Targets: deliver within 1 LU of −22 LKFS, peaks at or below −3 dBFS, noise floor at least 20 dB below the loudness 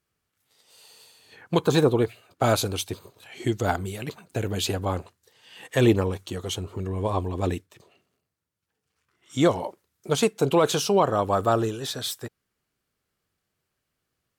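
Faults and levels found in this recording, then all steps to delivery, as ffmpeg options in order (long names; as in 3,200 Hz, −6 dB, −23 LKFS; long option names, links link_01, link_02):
integrated loudness −25.5 LKFS; sample peak −10.0 dBFS; target loudness −22.0 LKFS
→ -af "volume=3.5dB"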